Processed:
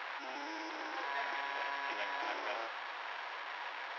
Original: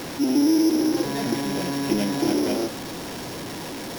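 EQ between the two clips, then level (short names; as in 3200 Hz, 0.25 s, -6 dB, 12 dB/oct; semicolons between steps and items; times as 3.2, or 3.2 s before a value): Bessel high-pass 1500 Hz, order 4; air absorption 160 m; tape spacing loss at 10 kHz 43 dB; +9.5 dB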